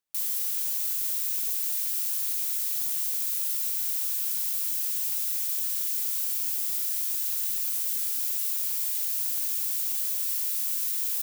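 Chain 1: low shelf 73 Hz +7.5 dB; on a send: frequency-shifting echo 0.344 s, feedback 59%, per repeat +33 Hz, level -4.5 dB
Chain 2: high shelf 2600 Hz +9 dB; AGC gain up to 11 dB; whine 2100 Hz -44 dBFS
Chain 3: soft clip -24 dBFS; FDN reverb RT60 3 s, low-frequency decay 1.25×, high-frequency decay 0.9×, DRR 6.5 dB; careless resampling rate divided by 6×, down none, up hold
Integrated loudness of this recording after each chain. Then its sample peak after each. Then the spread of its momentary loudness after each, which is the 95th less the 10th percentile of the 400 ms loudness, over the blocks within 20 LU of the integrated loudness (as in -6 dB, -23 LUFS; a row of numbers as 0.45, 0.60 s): -23.5, -10.5, -28.0 LUFS; -12.5, -1.0, -18.5 dBFS; 0, 1, 0 LU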